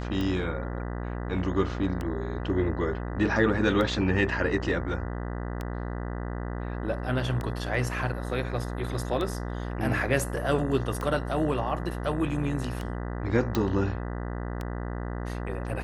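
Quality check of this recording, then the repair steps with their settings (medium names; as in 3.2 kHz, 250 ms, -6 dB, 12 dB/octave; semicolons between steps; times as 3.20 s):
buzz 60 Hz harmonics 33 -33 dBFS
tick 33 1/3 rpm -19 dBFS
13.55 s: pop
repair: de-click; de-hum 60 Hz, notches 33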